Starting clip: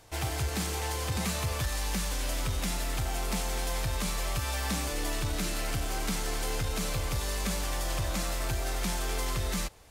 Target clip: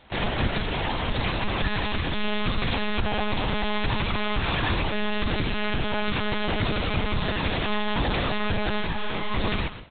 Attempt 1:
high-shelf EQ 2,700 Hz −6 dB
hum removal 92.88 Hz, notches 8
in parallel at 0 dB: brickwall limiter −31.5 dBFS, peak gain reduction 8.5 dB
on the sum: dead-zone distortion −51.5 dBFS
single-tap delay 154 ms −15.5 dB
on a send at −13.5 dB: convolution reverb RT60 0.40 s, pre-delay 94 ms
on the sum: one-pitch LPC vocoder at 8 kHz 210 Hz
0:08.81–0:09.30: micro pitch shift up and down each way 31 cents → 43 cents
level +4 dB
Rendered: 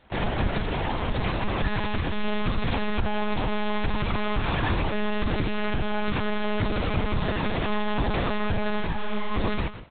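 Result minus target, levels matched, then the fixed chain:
4,000 Hz band −4.5 dB
high-shelf EQ 2,700 Hz +5 dB
hum removal 92.88 Hz, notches 8
in parallel at 0 dB: brickwall limiter −31.5 dBFS, peak gain reduction 12 dB
on the sum: dead-zone distortion −51.5 dBFS
single-tap delay 154 ms −15.5 dB
on a send at −13.5 dB: convolution reverb RT60 0.40 s, pre-delay 94 ms
on the sum: one-pitch LPC vocoder at 8 kHz 210 Hz
0:08.81–0:09.30: micro pitch shift up and down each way 31 cents → 43 cents
level +4 dB

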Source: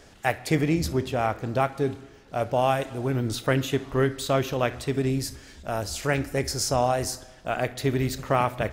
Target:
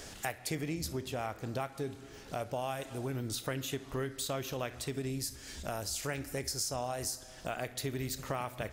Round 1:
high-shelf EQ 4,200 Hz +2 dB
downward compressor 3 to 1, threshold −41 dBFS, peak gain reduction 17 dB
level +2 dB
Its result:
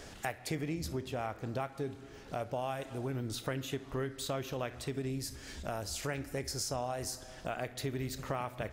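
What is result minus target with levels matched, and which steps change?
8,000 Hz band −3.0 dB
change: high-shelf EQ 4,200 Hz +10.5 dB

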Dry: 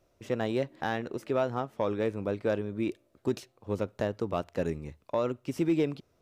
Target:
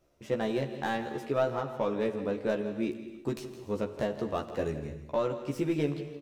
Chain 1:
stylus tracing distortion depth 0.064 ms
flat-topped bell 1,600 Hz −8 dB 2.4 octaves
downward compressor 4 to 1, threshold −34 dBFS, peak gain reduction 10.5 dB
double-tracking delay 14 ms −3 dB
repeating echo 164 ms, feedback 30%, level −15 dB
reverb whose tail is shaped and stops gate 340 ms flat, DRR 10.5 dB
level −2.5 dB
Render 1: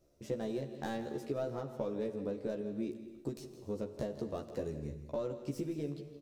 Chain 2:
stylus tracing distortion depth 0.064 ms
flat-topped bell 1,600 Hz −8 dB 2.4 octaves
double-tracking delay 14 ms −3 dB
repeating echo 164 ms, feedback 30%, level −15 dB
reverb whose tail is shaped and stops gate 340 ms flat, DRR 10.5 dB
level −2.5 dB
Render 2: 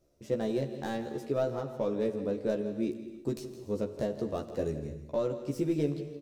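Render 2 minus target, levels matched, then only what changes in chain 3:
2,000 Hz band −7.0 dB
remove: flat-topped bell 1,600 Hz −8 dB 2.4 octaves

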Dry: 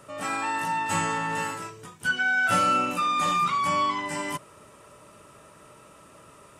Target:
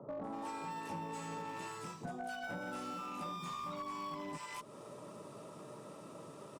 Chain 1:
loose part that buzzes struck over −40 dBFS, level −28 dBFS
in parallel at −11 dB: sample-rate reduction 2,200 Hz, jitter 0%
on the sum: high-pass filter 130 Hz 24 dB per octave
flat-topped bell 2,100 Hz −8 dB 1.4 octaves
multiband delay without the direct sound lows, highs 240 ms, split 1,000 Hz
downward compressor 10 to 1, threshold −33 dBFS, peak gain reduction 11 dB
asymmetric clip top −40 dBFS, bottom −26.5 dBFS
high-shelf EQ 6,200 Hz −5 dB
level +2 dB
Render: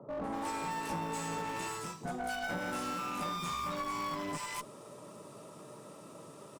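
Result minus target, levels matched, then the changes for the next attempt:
downward compressor: peak gain reduction −7 dB; 8,000 Hz band +2.5 dB
change: downward compressor 10 to 1, threshold −41 dBFS, peak gain reduction 18.5 dB
change: high-shelf EQ 6,200 Hz −12 dB

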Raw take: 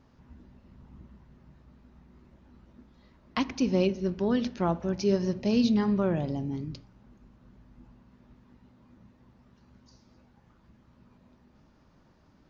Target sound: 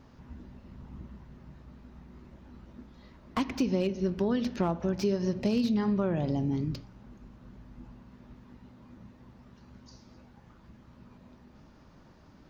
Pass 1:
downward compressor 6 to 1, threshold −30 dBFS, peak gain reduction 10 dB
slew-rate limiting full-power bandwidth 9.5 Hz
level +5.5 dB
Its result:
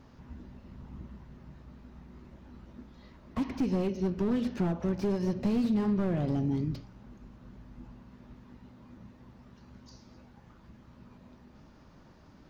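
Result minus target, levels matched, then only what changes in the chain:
slew-rate limiting: distortion +12 dB
change: slew-rate limiting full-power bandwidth 35 Hz

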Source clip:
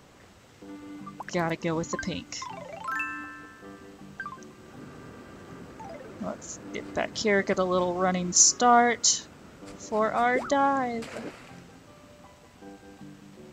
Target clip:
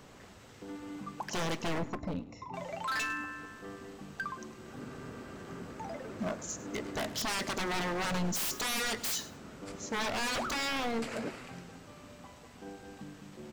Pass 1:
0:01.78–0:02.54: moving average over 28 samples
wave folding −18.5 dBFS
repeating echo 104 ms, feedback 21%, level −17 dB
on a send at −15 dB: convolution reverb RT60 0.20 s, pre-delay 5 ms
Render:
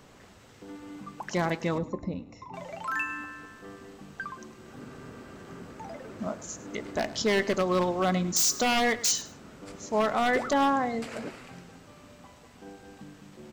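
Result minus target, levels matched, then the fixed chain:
wave folding: distortion −15 dB
0:01.78–0:02.54: moving average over 28 samples
wave folding −28.5 dBFS
repeating echo 104 ms, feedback 21%, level −17 dB
on a send at −15 dB: convolution reverb RT60 0.20 s, pre-delay 5 ms

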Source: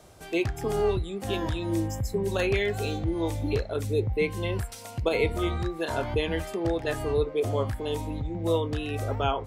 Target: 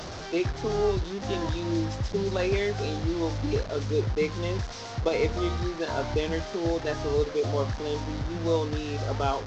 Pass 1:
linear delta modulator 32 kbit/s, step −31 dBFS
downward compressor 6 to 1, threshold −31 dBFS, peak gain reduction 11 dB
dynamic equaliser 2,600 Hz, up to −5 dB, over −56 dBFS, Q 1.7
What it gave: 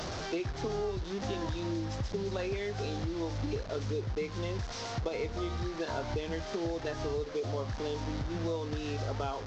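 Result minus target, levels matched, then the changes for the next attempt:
downward compressor: peak gain reduction +11 dB
remove: downward compressor 6 to 1, threshold −31 dBFS, peak gain reduction 11 dB

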